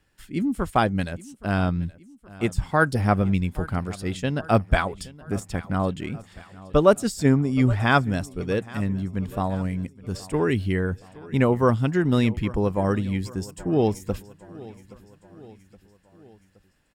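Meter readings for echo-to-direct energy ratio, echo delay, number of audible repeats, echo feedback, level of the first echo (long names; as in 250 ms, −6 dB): −18.5 dB, 821 ms, 3, 55%, −20.0 dB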